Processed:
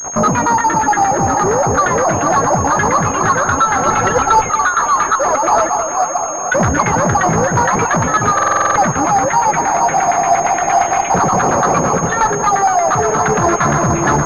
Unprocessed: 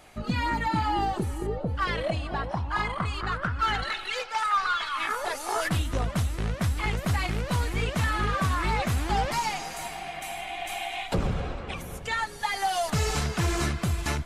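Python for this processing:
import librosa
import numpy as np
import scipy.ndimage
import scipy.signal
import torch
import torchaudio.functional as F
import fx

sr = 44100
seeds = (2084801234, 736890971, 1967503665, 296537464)

p1 = fx.spec_dropout(x, sr, seeds[0], share_pct=25)
p2 = scipy.signal.sosfilt(scipy.signal.butter(4, 130.0, 'highpass', fs=sr, output='sos'), p1)
p3 = fx.fuzz(p2, sr, gain_db=50.0, gate_db=-51.0)
p4 = fx.filter_lfo_lowpass(p3, sr, shape='saw_down', hz=8.6, low_hz=710.0, high_hz=1600.0, q=2.5)
p5 = fx.vowel_filter(p4, sr, vowel='a', at=(5.69, 6.52))
p6 = p5 + fx.echo_alternate(p5, sr, ms=221, hz=1300.0, feedback_pct=69, wet_db=-7.5, dry=0)
p7 = fx.rider(p6, sr, range_db=3, speed_s=0.5)
p8 = fx.low_shelf(p7, sr, hz=370.0, db=10.0, at=(3.85, 4.5))
p9 = fx.buffer_glitch(p8, sr, at_s=(8.34,), block=2048, repeats=8)
p10 = fx.pwm(p9, sr, carrier_hz=6500.0)
y = p10 * 10.0 ** (-2.0 / 20.0)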